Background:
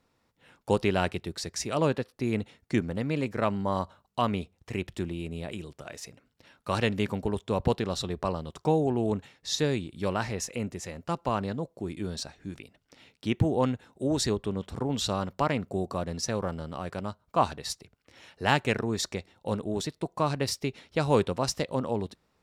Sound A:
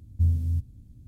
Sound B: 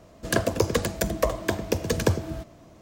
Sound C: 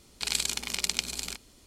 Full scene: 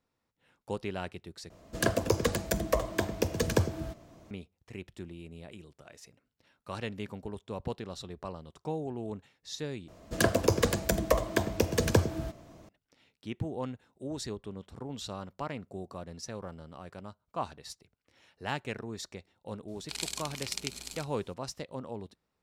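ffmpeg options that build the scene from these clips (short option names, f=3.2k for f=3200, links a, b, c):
-filter_complex "[2:a]asplit=2[a][b];[0:a]volume=-10.5dB,asplit=3[c][d][e];[c]atrim=end=1.504[f];[a]atrim=end=2.81,asetpts=PTS-STARTPTS,volume=-4dB[g];[d]atrim=start=4.306:end=9.884[h];[b]atrim=end=2.81,asetpts=PTS-STARTPTS,volume=-2dB[i];[e]atrim=start=12.686[j];[3:a]atrim=end=1.66,asetpts=PTS-STARTPTS,volume=-8dB,afade=t=in:d=0.004:c=hsin,afade=t=out:st=1.656:d=0.004:c=hsin,adelay=19680[k];[f][g]acrossfade=d=0.004:c1=hsin:c2=hsin[l];[l][h]acrossfade=d=0.004:c1=hsin:c2=hsin[m];[m][i]acrossfade=d=0.004:c1=hsin:c2=hsin[n];[n][j]acrossfade=d=0.004:c1=hsin:c2=hsin[o];[o][k]amix=inputs=2:normalize=0"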